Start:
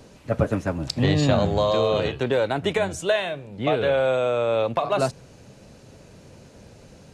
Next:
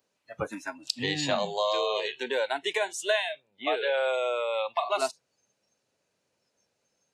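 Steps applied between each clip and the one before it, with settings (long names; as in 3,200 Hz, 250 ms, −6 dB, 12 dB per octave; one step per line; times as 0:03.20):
high-pass filter 930 Hz 6 dB per octave
noise reduction from a noise print of the clip's start 22 dB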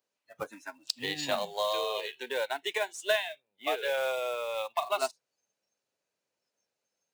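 low-shelf EQ 210 Hz −10 dB
floating-point word with a short mantissa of 2 bits
expander for the loud parts 1.5 to 1, over −39 dBFS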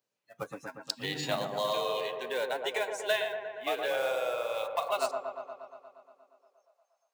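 tuned comb filter 230 Hz, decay 0.71 s, harmonics odd, mix 40%
delay with a low-pass on its return 118 ms, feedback 71%, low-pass 1,400 Hz, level −5 dB
high-pass filter sweep 120 Hz → 710 Hz, 0:05.86–0:06.83
level +2.5 dB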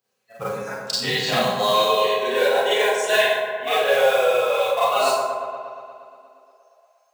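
notch comb filter 300 Hz
four-comb reverb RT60 0.63 s, combs from 30 ms, DRR −8 dB
level +5.5 dB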